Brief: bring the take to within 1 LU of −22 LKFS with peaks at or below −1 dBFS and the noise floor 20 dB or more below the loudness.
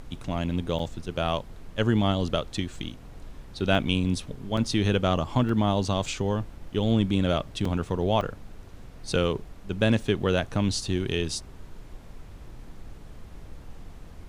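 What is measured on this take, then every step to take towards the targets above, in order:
number of dropouts 6; longest dropout 3.5 ms; background noise floor −45 dBFS; target noise floor −47 dBFS; integrated loudness −27.0 LKFS; sample peak −8.0 dBFS; target loudness −22.0 LKFS
→ repair the gap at 0:00.79/0:03.75/0:04.57/0:05.49/0:07.65/0:08.21, 3.5 ms
noise reduction from a noise print 6 dB
level +5 dB

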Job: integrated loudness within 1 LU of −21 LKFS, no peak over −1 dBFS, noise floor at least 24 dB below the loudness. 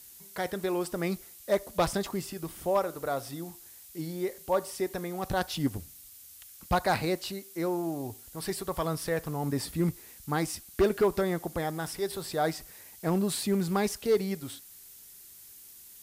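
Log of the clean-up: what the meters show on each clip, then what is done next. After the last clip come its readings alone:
share of clipped samples 0.3%; peaks flattened at −18.0 dBFS; background noise floor −51 dBFS; target noise floor −55 dBFS; integrated loudness −31.0 LKFS; sample peak −18.0 dBFS; target loudness −21.0 LKFS
→ clipped peaks rebuilt −18 dBFS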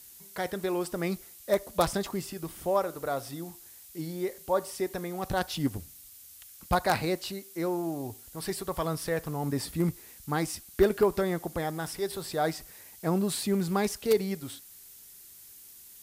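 share of clipped samples 0.0%; background noise floor −51 dBFS; target noise floor −55 dBFS
→ broadband denoise 6 dB, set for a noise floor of −51 dBFS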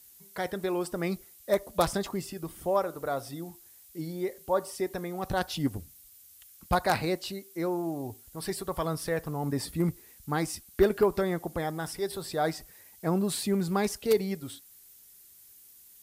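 background noise floor −55 dBFS; integrated loudness −31.0 LKFS; sample peak −9.0 dBFS; target loudness −21.0 LKFS
→ level +10 dB
brickwall limiter −1 dBFS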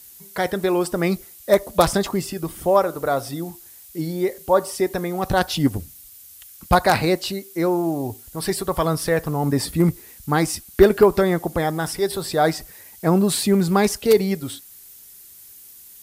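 integrated loudness −21.0 LKFS; sample peak −1.0 dBFS; background noise floor −45 dBFS

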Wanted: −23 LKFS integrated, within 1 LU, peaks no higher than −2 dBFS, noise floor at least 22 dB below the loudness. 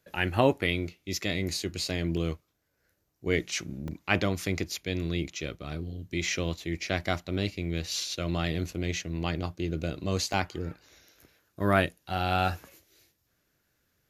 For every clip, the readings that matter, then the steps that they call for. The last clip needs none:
number of dropouts 3; longest dropout 2.1 ms; integrated loudness −30.5 LKFS; sample peak −7.5 dBFS; target loudness −23.0 LKFS
→ repair the gap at 0:02.17/0:03.88/0:10.33, 2.1 ms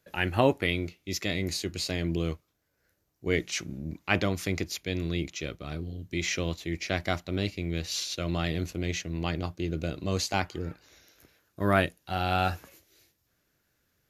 number of dropouts 0; integrated loudness −30.5 LKFS; sample peak −7.5 dBFS; target loudness −23.0 LKFS
→ level +7.5 dB
brickwall limiter −2 dBFS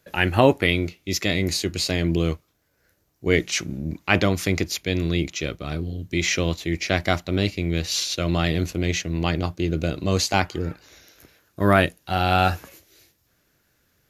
integrated loudness −23.0 LKFS; sample peak −2.0 dBFS; background noise floor −68 dBFS

